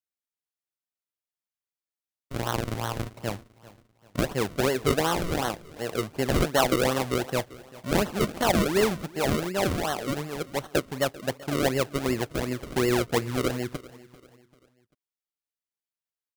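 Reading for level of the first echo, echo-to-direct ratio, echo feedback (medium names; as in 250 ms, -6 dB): -20.0 dB, -19.0 dB, 41%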